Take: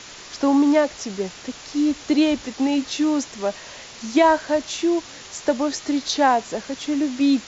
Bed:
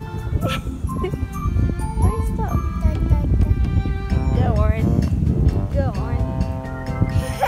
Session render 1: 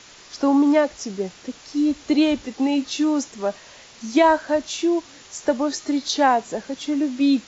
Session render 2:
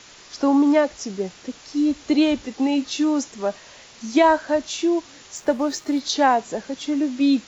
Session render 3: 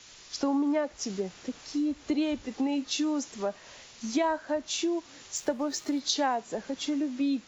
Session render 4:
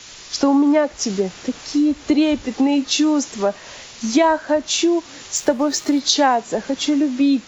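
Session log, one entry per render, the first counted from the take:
noise print and reduce 6 dB
5.36–6.00 s: hysteresis with a dead band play -39 dBFS
compression 3:1, threshold -29 dBFS, peak gain reduction 13 dB; three bands expanded up and down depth 40%
trim +12 dB; peak limiter -3 dBFS, peak gain reduction 1 dB

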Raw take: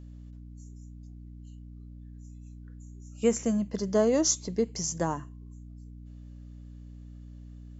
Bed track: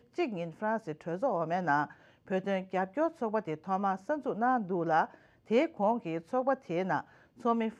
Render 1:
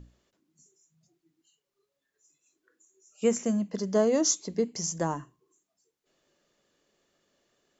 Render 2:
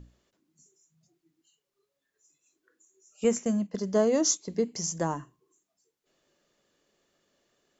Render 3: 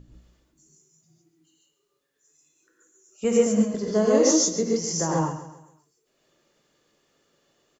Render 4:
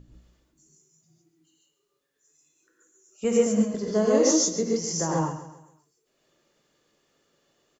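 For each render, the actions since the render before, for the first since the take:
hum notches 60/120/180/240/300 Hz
3.24–4.48 s: gate -37 dBFS, range -6 dB
on a send: feedback delay 134 ms, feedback 41%, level -12.5 dB; on the sum: gated-style reverb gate 170 ms rising, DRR -3.5 dB
trim -1.5 dB

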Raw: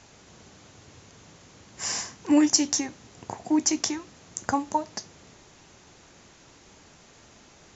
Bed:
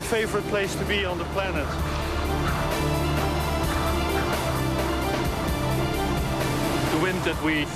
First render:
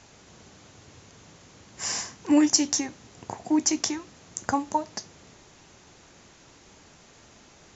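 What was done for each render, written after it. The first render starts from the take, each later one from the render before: no audible change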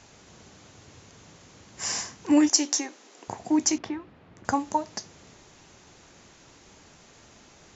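2.49–3.28 s: high-pass 290 Hz 24 dB/octave; 3.78–4.45 s: distance through air 440 m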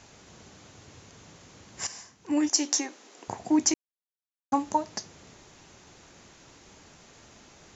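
1.87–2.73 s: fade in quadratic, from -14 dB; 3.74–4.52 s: mute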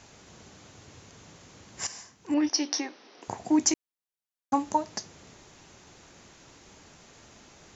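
2.34–3.22 s: steep low-pass 5.8 kHz 96 dB/octave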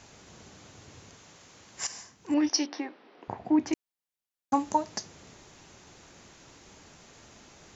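1.15–1.90 s: bass shelf 390 Hz -8 dB; 2.66–3.73 s: distance through air 340 m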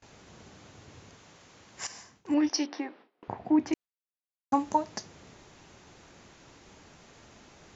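gate with hold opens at -44 dBFS; treble shelf 6.9 kHz -10.5 dB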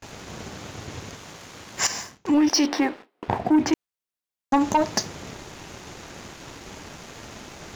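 in parallel at -2 dB: compressor with a negative ratio -32 dBFS, ratio -0.5; on the sum: waveshaping leveller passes 2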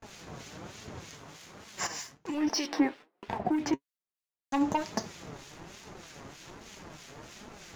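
flange 1.2 Hz, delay 4.3 ms, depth 3.2 ms, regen +50%; harmonic tremolo 3.2 Hz, depth 70%, crossover 1.7 kHz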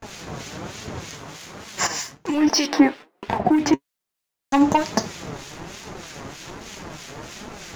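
trim +11 dB

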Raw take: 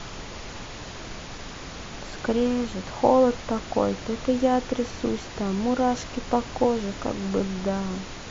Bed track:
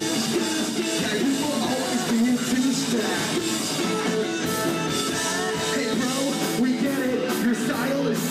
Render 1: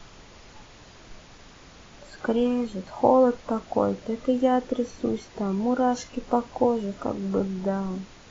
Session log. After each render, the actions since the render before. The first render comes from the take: noise print and reduce 11 dB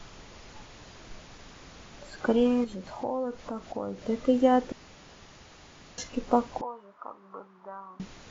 2.64–4.05 s: compression 2:1, threshold -38 dBFS; 4.72–5.98 s: room tone; 6.61–8.00 s: band-pass filter 1.1 kHz, Q 4.8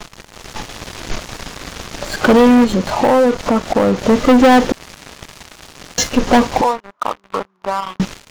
level rider gain up to 4.5 dB; waveshaping leveller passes 5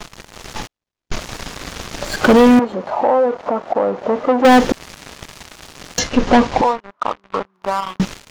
0.67–1.12 s: gate -22 dBFS, range -56 dB; 2.59–4.45 s: band-pass filter 710 Hz, Q 1.2; 5.99–7.54 s: distance through air 84 m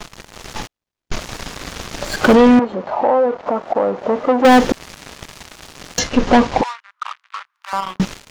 2.35–3.47 s: distance through air 75 m; 6.63–7.73 s: high-pass 1.3 kHz 24 dB/octave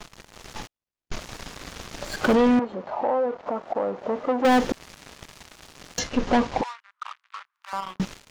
trim -9 dB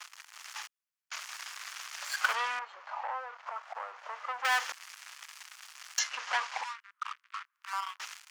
high-pass 1.1 kHz 24 dB/octave; peaking EQ 3.8 kHz -4.5 dB 0.39 oct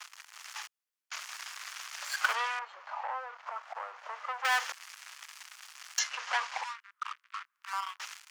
high-pass 360 Hz 24 dB/octave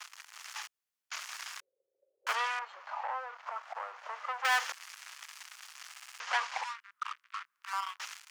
1.60–2.27 s: rippled Chebyshev low-pass 550 Hz, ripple 6 dB; 5.90 s: stutter in place 0.06 s, 5 plays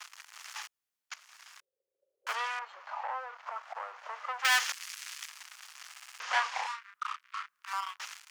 1.14–2.79 s: fade in linear, from -18 dB; 4.39–5.29 s: tilt shelf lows -8 dB, about 1.2 kHz; 6.18–7.73 s: doubling 32 ms -2.5 dB

